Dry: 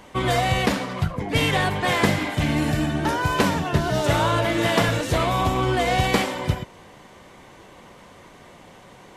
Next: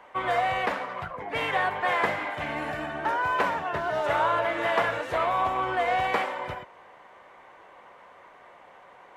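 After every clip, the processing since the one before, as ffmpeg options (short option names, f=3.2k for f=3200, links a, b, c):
-filter_complex "[0:a]acrossover=split=510 2300:gain=0.1 1 0.112[a][b][c];[a][b][c]amix=inputs=3:normalize=0"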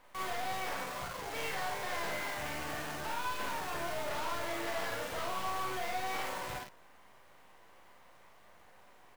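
-filter_complex "[0:a]acrusher=bits=7:dc=4:mix=0:aa=0.000001,aeval=exprs='(tanh(44.7*val(0)+0.55)-tanh(0.55))/44.7':c=same,asplit=2[a][b];[b]aecho=0:1:38|53:0.596|0.668[c];[a][c]amix=inputs=2:normalize=0,volume=-5dB"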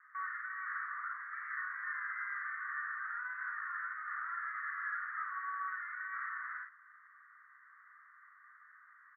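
-af "aresample=16000,asoftclip=type=tanh:threshold=-35.5dB,aresample=44100,asuperpass=centerf=1500:order=12:qfactor=1.9,volume=8dB"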